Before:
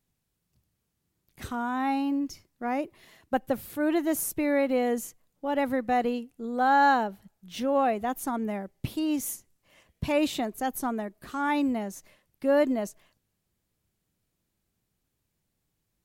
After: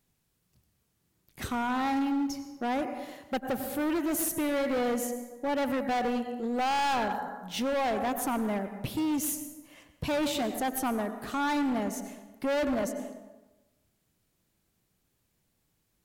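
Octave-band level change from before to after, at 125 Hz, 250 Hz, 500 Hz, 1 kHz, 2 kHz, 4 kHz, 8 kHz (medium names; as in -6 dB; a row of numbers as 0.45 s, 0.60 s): -0.5 dB, -1.5 dB, -3.0 dB, -3.5 dB, -2.5 dB, +2.5 dB, +1.5 dB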